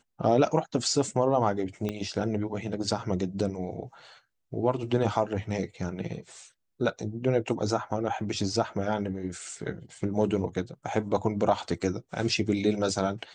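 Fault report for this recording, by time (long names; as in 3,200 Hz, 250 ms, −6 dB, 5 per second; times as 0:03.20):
0:01.89: click −17 dBFS
0:08.20: drop-out 2.3 ms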